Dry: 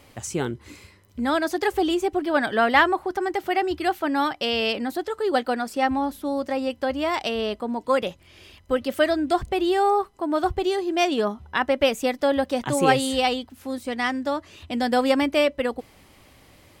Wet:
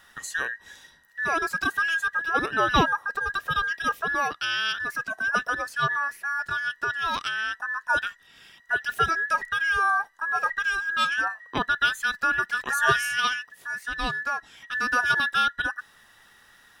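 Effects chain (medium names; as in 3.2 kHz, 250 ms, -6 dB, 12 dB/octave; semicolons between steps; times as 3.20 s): every band turned upside down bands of 2 kHz; trim -3 dB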